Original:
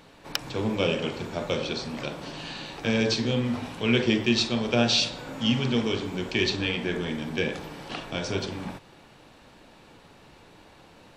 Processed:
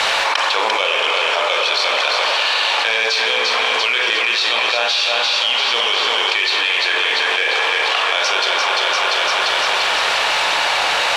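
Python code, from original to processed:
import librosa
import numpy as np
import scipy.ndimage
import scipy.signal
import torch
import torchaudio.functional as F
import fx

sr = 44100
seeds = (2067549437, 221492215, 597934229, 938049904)

y = fx.cvsd(x, sr, bps=64000)
y = fx.dynamic_eq(y, sr, hz=1100.0, q=3.2, threshold_db=-52.0, ratio=4.0, max_db=5)
y = scipy.signal.sosfilt(scipy.signal.butter(4, 610.0, 'highpass', fs=sr, output='sos'), y)
y = fx.rev_spring(y, sr, rt60_s=1.6, pass_ms=(40, 51), chirp_ms=40, drr_db=7.5)
y = fx.quant_dither(y, sr, seeds[0], bits=10, dither='none')
y = scipy.signal.sosfilt(scipy.signal.butter(2, 3500.0, 'lowpass', fs=sr, output='sos'), y)
y = fx.high_shelf(y, sr, hz=2200.0, db=12.0)
y = fx.echo_feedback(y, sr, ms=345, feedback_pct=55, wet_db=-7.5)
y = fx.env_flatten(y, sr, amount_pct=100)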